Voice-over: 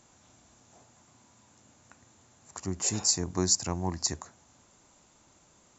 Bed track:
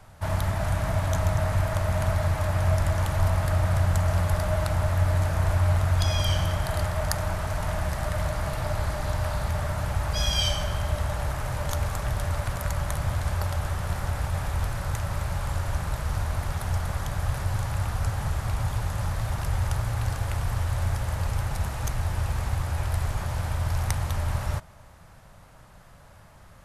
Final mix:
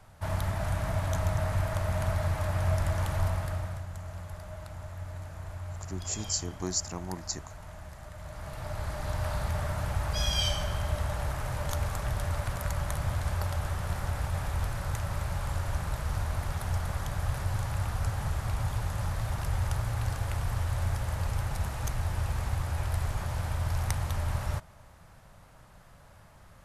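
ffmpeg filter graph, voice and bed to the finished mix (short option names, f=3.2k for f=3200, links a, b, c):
-filter_complex "[0:a]adelay=3250,volume=-5.5dB[a];[1:a]volume=9dB,afade=t=out:st=3.16:d=0.68:silence=0.237137,afade=t=in:st=8.19:d=1.14:silence=0.211349[b];[a][b]amix=inputs=2:normalize=0"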